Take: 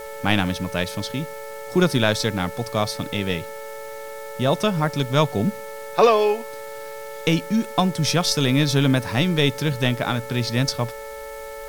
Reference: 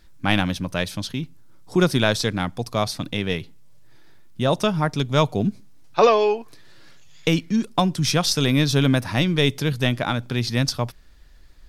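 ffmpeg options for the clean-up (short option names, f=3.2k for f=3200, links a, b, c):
-af "bandreject=f=439.8:t=h:w=4,bandreject=f=879.6:t=h:w=4,bandreject=f=1.3194k:t=h:w=4,bandreject=f=1.7592k:t=h:w=4,bandreject=f=2.199k:t=h:w=4,bandreject=f=560:w=30,afwtdn=0.005"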